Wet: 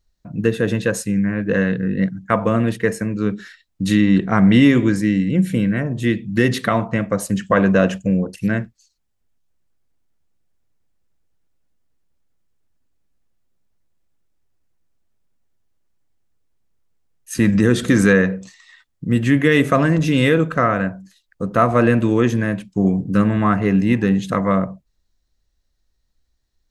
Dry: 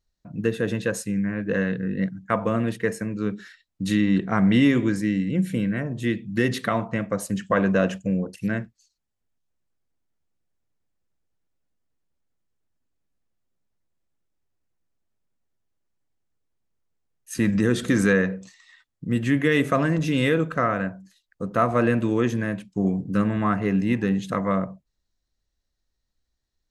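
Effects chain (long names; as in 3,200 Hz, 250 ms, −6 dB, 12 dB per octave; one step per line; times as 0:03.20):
low-shelf EQ 73 Hz +5.5 dB
level +5.5 dB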